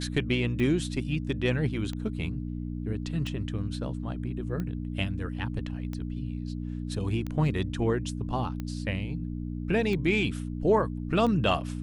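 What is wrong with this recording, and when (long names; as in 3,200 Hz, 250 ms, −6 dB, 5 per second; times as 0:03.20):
mains hum 60 Hz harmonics 5 −34 dBFS
scratch tick 45 rpm −22 dBFS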